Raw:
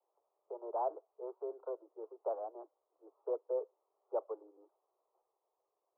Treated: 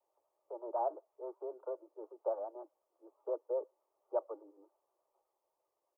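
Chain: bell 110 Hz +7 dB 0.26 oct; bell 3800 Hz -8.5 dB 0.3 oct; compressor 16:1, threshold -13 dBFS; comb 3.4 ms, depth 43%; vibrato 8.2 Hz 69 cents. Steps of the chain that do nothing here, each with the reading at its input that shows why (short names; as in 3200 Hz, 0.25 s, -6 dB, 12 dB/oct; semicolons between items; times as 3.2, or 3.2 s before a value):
bell 110 Hz: input band starts at 300 Hz; bell 3800 Hz: input band ends at 1100 Hz; compressor, threshold -13 dBFS: input peak -24.0 dBFS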